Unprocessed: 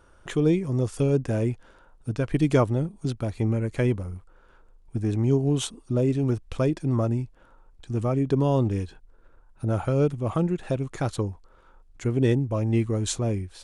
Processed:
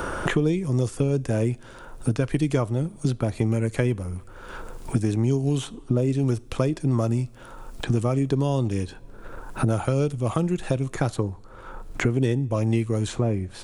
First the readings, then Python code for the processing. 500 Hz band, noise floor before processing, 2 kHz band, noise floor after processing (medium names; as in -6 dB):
-0.5 dB, -56 dBFS, +5.5 dB, -45 dBFS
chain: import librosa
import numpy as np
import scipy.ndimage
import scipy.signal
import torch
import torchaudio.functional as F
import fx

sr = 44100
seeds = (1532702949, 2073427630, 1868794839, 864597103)

y = fx.high_shelf(x, sr, hz=6400.0, db=8.0)
y = fx.rev_double_slope(y, sr, seeds[0], early_s=0.37, late_s=1.7, knee_db=-18, drr_db=19.5)
y = fx.band_squash(y, sr, depth_pct=100)